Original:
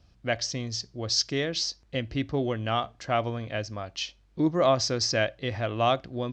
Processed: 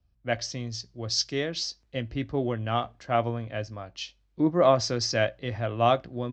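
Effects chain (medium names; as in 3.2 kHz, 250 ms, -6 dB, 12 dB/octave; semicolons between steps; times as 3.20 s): treble shelf 3.6 kHz -6 dB; doubling 17 ms -13 dB; three bands expanded up and down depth 40%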